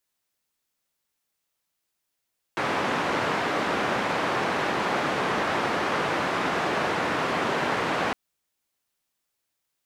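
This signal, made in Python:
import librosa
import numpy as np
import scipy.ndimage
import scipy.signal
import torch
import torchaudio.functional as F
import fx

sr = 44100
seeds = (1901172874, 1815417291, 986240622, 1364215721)

y = fx.band_noise(sr, seeds[0], length_s=5.56, low_hz=160.0, high_hz=1400.0, level_db=-26.0)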